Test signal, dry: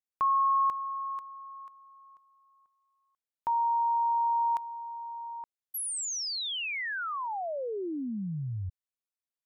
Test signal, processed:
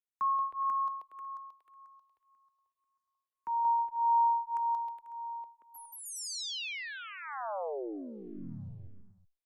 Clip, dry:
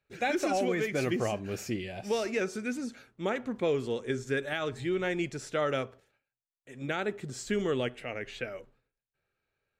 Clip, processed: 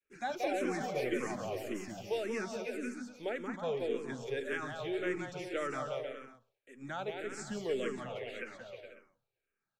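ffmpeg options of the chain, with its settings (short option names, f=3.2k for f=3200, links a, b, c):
-filter_complex "[0:a]acrossover=split=160|490|1700[a][b][c][d];[a]aeval=exprs='max(val(0),0)':c=same[e];[e][b][c][d]amix=inputs=4:normalize=0,adynamicequalizer=threshold=0.0141:dfrequency=800:dqfactor=0.78:tfrequency=800:tqfactor=0.78:attack=5:release=100:ratio=0.375:range=1.5:mode=boostabove:tftype=bell,aecho=1:1:180|315|416.2|492.2|549.1:0.631|0.398|0.251|0.158|0.1,asplit=2[f][g];[g]afreqshift=-1.8[h];[f][h]amix=inputs=2:normalize=1,volume=-5.5dB"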